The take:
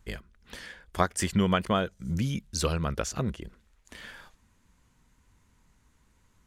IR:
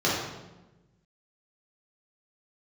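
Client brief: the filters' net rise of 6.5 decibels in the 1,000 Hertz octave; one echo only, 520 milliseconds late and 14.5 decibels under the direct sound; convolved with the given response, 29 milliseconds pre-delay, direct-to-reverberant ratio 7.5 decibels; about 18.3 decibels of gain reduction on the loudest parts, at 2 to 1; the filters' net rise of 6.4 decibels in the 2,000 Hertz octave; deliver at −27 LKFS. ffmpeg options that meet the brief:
-filter_complex "[0:a]equalizer=frequency=1000:width_type=o:gain=6.5,equalizer=frequency=2000:width_type=o:gain=6,acompressor=threshold=-50dB:ratio=2,aecho=1:1:520:0.188,asplit=2[link_01][link_02];[1:a]atrim=start_sample=2205,adelay=29[link_03];[link_02][link_03]afir=irnorm=-1:irlink=0,volume=-22.5dB[link_04];[link_01][link_04]amix=inputs=2:normalize=0,volume=15dB"

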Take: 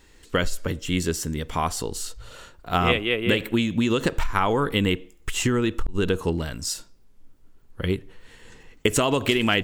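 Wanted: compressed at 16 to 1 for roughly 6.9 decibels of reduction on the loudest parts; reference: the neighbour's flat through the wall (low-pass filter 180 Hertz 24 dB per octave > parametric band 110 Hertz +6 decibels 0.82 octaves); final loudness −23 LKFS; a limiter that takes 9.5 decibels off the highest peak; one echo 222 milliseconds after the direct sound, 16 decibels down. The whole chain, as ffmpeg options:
ffmpeg -i in.wav -af "acompressor=threshold=-25dB:ratio=16,alimiter=limit=-20.5dB:level=0:latency=1,lowpass=frequency=180:width=0.5412,lowpass=frequency=180:width=1.3066,equalizer=frequency=110:width_type=o:width=0.82:gain=6,aecho=1:1:222:0.158,volume=14.5dB" out.wav

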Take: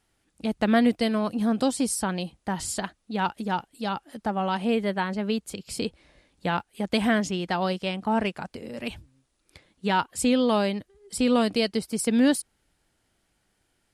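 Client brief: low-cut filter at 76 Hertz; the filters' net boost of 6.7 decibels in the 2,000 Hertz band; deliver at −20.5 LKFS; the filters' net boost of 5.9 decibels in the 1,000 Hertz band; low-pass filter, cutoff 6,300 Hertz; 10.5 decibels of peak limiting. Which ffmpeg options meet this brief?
ffmpeg -i in.wav -af "highpass=76,lowpass=6300,equalizer=frequency=1000:width_type=o:gain=6,equalizer=frequency=2000:width_type=o:gain=6.5,volume=7dB,alimiter=limit=-8dB:level=0:latency=1" out.wav

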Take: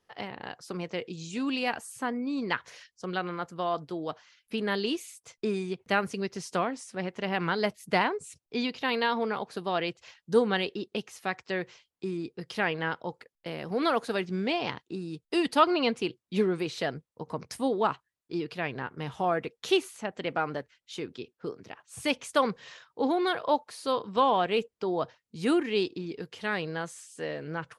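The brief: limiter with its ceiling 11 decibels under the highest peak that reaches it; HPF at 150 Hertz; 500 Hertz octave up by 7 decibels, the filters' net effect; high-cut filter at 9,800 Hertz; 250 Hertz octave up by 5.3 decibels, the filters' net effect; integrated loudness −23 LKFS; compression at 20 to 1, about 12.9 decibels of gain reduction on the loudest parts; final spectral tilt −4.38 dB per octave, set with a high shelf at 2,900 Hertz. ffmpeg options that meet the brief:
ffmpeg -i in.wav -af "highpass=150,lowpass=9800,equalizer=frequency=250:width_type=o:gain=5,equalizer=frequency=500:width_type=o:gain=7,highshelf=frequency=2900:gain=8,acompressor=threshold=-22dB:ratio=20,volume=10dB,alimiter=limit=-11.5dB:level=0:latency=1" out.wav

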